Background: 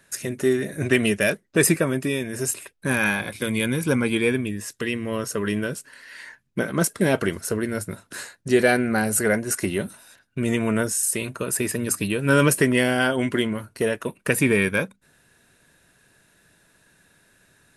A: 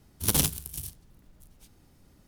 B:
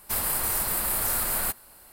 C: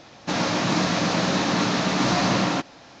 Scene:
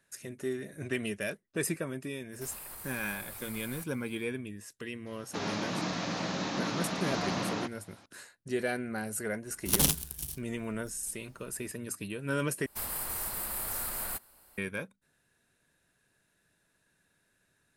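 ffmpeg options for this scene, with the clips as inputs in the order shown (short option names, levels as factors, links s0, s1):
-filter_complex "[2:a]asplit=2[s0][s1];[0:a]volume=0.2[s2];[s0]alimiter=level_in=1.19:limit=0.0631:level=0:latency=1:release=71,volume=0.841[s3];[1:a]equalizer=f=100:t=o:w=0.43:g=-12[s4];[s2]asplit=2[s5][s6];[s5]atrim=end=12.664[s7];[s1]atrim=end=1.92,asetpts=PTS-STARTPTS,volume=0.355[s8];[s6]atrim=start=14.576[s9];[s3]atrim=end=1.92,asetpts=PTS-STARTPTS,volume=0.316,afade=t=in:d=0.004:c=hsin,afade=t=out:st=1.916:d=0.004:c=hsin,adelay=2320[s10];[3:a]atrim=end=3,asetpts=PTS-STARTPTS,volume=0.266,afade=t=in:d=0.004:c=hsin,afade=t=out:st=2.996:d=0.004:c=hsin,adelay=5060[s11];[s4]atrim=end=2.27,asetpts=PTS-STARTPTS,volume=0.891,afade=t=in:d=0.004:c=hsin,afade=t=out:st=2.266:d=0.004:c=hsin,adelay=9450[s12];[s7][s8]acrossfade=d=0.004:c1=hsin:c2=hsin[s13];[s13][s9]acrossfade=d=0.004:c1=hsin:c2=hsin[s14];[s14][s10][s11][s12]amix=inputs=4:normalize=0"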